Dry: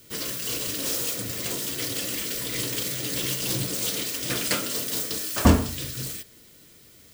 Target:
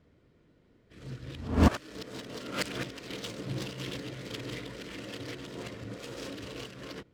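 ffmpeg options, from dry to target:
-af "areverse,adynamicsmooth=sensitivity=3:basefreq=1400,volume=0.562"

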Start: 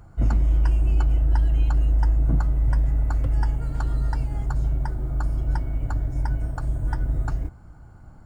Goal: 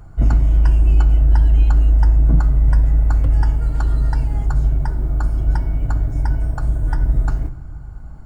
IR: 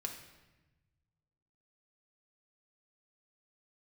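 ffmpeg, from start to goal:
-filter_complex "[0:a]asplit=2[s0][s1];[1:a]atrim=start_sample=2205,lowshelf=f=120:g=10[s2];[s1][s2]afir=irnorm=-1:irlink=0,volume=0.75[s3];[s0][s3]amix=inputs=2:normalize=0"

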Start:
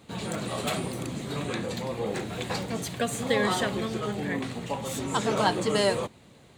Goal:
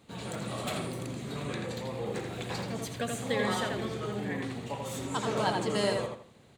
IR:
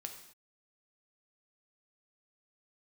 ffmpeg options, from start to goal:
-filter_complex "[0:a]asplit=2[s0][s1];[s1]adelay=83,lowpass=f=4300:p=1,volume=0.668,asplit=2[s2][s3];[s3]adelay=83,lowpass=f=4300:p=1,volume=0.31,asplit=2[s4][s5];[s5]adelay=83,lowpass=f=4300:p=1,volume=0.31,asplit=2[s6][s7];[s7]adelay=83,lowpass=f=4300:p=1,volume=0.31[s8];[s0][s2][s4][s6][s8]amix=inputs=5:normalize=0,volume=0.501"

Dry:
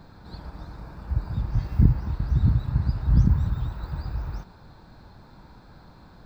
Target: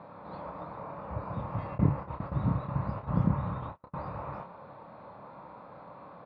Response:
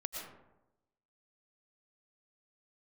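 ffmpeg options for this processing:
-filter_complex "[0:a]asettb=1/sr,asplit=3[s0][s1][s2];[s0]atrim=end=1.754[s3];[s1]atrim=start=1.75:end=3.94,asetpts=PTS-STARTPTS,afade=t=in:d=0.004:c=qsin,afade=t=out:st=2.186:d=0.004:c=qsin,agate=range=0.0126:threshold=0.0447:ratio=16:detection=peak[s4];[s2]atrim=start=3.936[s5];[s3][s4]acrossfade=d=0.004:c1=hsin:c2=qsin[s6];[s6][s5]acrossfade=d=0.004:c1=qsin:c2=hsin,highpass=220,equalizer=f=240:t=q:w=4:g=-5,equalizer=f=360:t=q:w=4:g=-7,equalizer=f=560:t=q:w=4:g=9,equalizer=f=1100:t=q:w=4:g=8,equalizer=f=1600:t=q:w=4:g=-9,lowpass=f=2500:w=0.5412,lowpass=f=2500:w=1.3066,asplit=2[s7][s8];[s8]adelay=29,volume=0.501[s9];[s7][s9]amix=inputs=2:normalize=0,volume=1.41"

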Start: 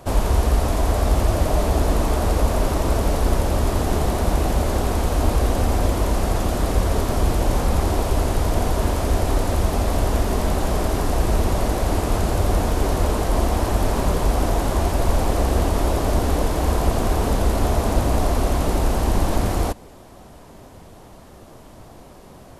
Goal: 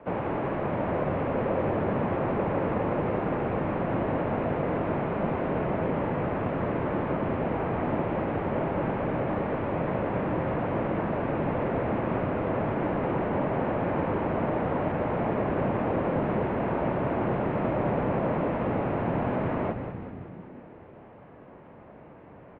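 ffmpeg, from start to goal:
-filter_complex "[0:a]asplit=9[s0][s1][s2][s3][s4][s5][s6][s7][s8];[s1]adelay=188,afreqshift=-75,volume=0.376[s9];[s2]adelay=376,afreqshift=-150,volume=0.226[s10];[s3]adelay=564,afreqshift=-225,volume=0.135[s11];[s4]adelay=752,afreqshift=-300,volume=0.0813[s12];[s5]adelay=940,afreqshift=-375,volume=0.049[s13];[s6]adelay=1128,afreqshift=-450,volume=0.0292[s14];[s7]adelay=1316,afreqshift=-525,volume=0.0176[s15];[s8]adelay=1504,afreqshift=-600,volume=0.0105[s16];[s0][s9][s10][s11][s12][s13][s14][s15][s16]amix=inputs=9:normalize=0,highpass=f=180:t=q:w=0.5412,highpass=f=180:t=q:w=1.307,lowpass=f=2500:t=q:w=0.5176,lowpass=f=2500:t=q:w=0.7071,lowpass=f=2500:t=q:w=1.932,afreqshift=-83,volume=0.668"

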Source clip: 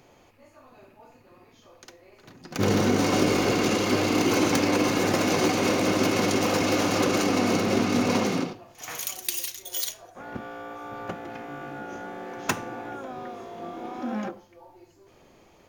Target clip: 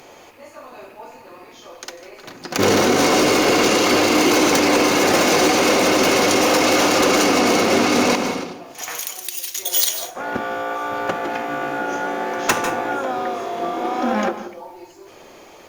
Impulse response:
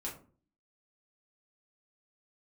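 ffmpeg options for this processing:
-filter_complex "[0:a]bass=f=250:g=-12,treble=f=4000:g=1,asettb=1/sr,asplit=3[s0][s1][s2];[s0]atrim=end=8.154[s3];[s1]atrim=start=8.15:end=9.55,asetpts=PTS-STARTPTS,afade=t=in:d=0.004:c=qsin,afade=t=out:st=1.396:d=0.004:c=qsin,acompressor=threshold=0.00631:ratio=2.5[s4];[s2]atrim=start=9.546[s5];[s3][s4]acrossfade=d=0.004:c1=hsin:c2=qsin[s6];[s6][s5]acrossfade=d=0.004:c1=qsin:c2=hsin,aeval=exprs='0.335*(cos(1*acos(clip(val(0)/0.335,-1,1)))-cos(1*PI/2))+0.0299*(cos(7*acos(clip(val(0)/0.335,-1,1)))-cos(7*PI/2))':c=same,asoftclip=type=tanh:threshold=0.0501,asplit=2[s7][s8];[1:a]atrim=start_sample=2205,adelay=146[s9];[s8][s9]afir=irnorm=-1:irlink=0,volume=0.237[s10];[s7][s10]amix=inputs=2:normalize=0,alimiter=level_in=31.6:limit=0.891:release=50:level=0:latency=1,volume=0.422" -ar 48000 -c:a libopus -b:a 64k

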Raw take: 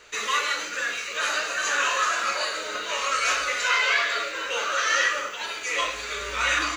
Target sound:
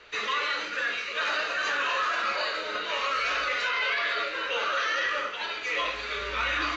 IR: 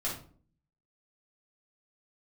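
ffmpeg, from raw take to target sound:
-filter_complex "[0:a]lowpass=f=4500:w=0.5412,lowpass=f=4500:w=1.3066,acrossover=split=370[s0][s1];[s1]alimiter=limit=0.112:level=0:latency=1:release=18[s2];[s0][s2]amix=inputs=2:normalize=0" -ar 22050 -c:a libmp3lame -b:a 56k

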